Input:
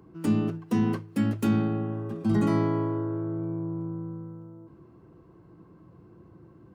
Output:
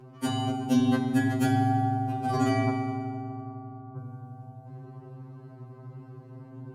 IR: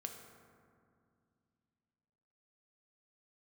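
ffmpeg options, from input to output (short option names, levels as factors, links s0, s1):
-filter_complex "[0:a]asettb=1/sr,asplit=3[s0][s1][s2];[s0]atrim=end=2.694[s3];[s1]atrim=start=2.69:end=3.97,asetpts=PTS-STARTPTS,afade=t=in:d=0.004:c=qsin,afade=t=out:st=1.276:d=0.004:c=qsin,asuperpass=centerf=1200:order=4:qfactor=4.1[s4];[s2]atrim=start=3.966[s5];[s3][s4]acrossfade=d=0.004:c1=hsin:c2=qsin[s6];[s6][s5]acrossfade=d=0.004:c1=qsin:c2=hsin[s7];[1:a]atrim=start_sample=2205,asetrate=25137,aresample=44100[s8];[s7][s8]afir=irnorm=-1:irlink=0,afftfilt=real='re*2.45*eq(mod(b,6),0)':imag='im*2.45*eq(mod(b,6),0)':win_size=2048:overlap=0.75,volume=2.51"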